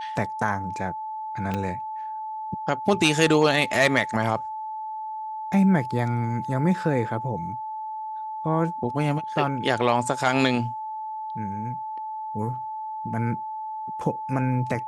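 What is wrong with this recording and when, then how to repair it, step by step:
whine 870 Hz -30 dBFS
1.54 s: pop -15 dBFS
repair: de-click; band-stop 870 Hz, Q 30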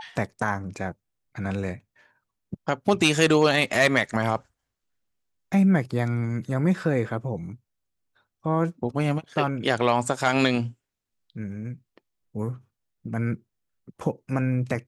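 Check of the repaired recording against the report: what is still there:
1.54 s: pop

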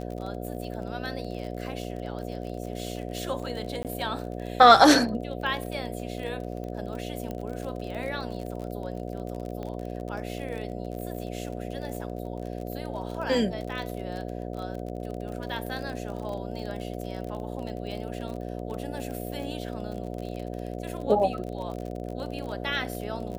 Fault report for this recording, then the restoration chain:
buzz 60 Hz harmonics 12 -35 dBFS
crackle 34 per s -34 dBFS
3.83–3.85 s: dropout 18 ms
7.31 s: pop -22 dBFS
9.63 s: pop -25 dBFS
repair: de-click; de-hum 60 Hz, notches 12; interpolate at 3.83 s, 18 ms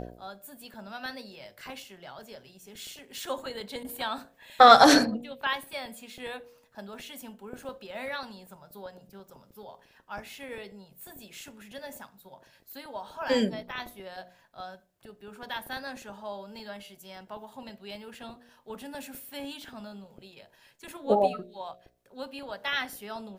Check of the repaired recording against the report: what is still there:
9.63 s: pop

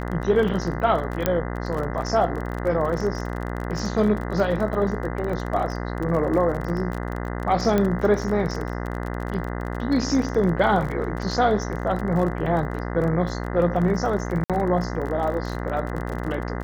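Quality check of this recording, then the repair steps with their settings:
buzz 60 Hz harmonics 34 -29 dBFS
crackle 32 per s -29 dBFS
1.26 s: pop -6 dBFS
7.78 s: pop -10 dBFS
14.44–14.50 s: dropout 57 ms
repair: de-click; de-hum 60 Hz, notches 34; interpolate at 14.44 s, 57 ms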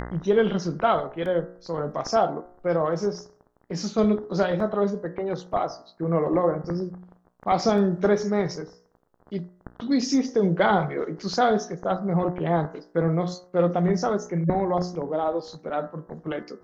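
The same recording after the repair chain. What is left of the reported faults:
1.26 s: pop
7.78 s: pop

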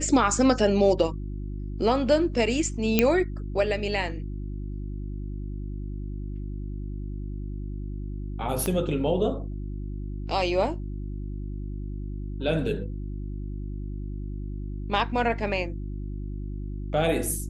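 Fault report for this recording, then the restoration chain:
hum 50 Hz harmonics 7 -33 dBFS
2.99 s: pop -5 dBFS
8.66 s: pop -14 dBFS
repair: de-click; de-hum 50 Hz, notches 7

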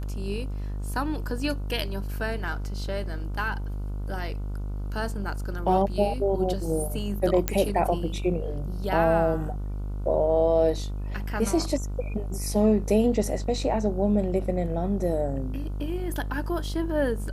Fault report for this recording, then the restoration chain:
buzz 50 Hz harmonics 30 -31 dBFS
7.48 s: pop -7 dBFS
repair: de-click; de-hum 50 Hz, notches 30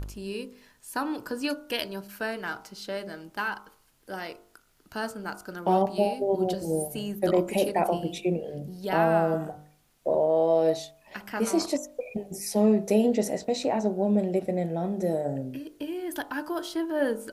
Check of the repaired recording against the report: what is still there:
nothing left

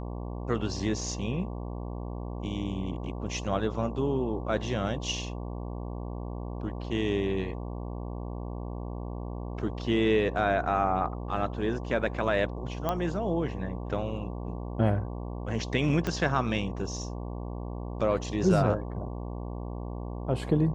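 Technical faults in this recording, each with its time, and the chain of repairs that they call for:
buzz 60 Hz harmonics 19 -36 dBFS
12.89 s: pop -15 dBFS
16.07 s: pop -15 dBFS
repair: de-click; de-hum 60 Hz, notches 19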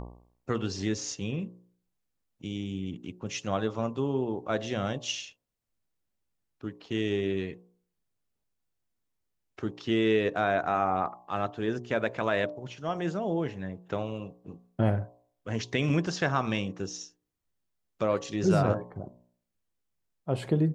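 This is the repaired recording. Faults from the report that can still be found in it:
16.07 s: pop

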